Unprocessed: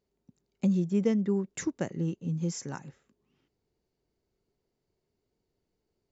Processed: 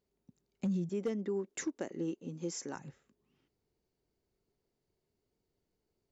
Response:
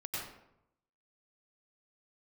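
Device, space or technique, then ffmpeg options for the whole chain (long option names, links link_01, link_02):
clipper into limiter: -filter_complex "[0:a]asettb=1/sr,asplit=3[link_01][link_02][link_03];[link_01]atrim=end=0.894[link_04];[link_02]atrim=start=0.89:end=2.76,asetpts=PTS-STARTPTS,afade=type=in:duration=0.004:curve=qsin,afade=type=out:start_time=1.866:duration=0.004:curve=qsin,lowshelf=frequency=210:width_type=q:width=1.5:gain=-11.5[link_05];[link_03]atrim=start=2.756[link_06];[link_04][link_05]acrossfade=duration=0.004:curve1=hsin:curve2=qsin[link_07];[link_07][link_06]acrossfade=duration=0.004:curve1=qsin:curve2=hsin,asoftclip=type=hard:threshold=-19dB,alimiter=level_in=0.5dB:limit=-24dB:level=0:latency=1:release=114,volume=-0.5dB,volume=-2.5dB"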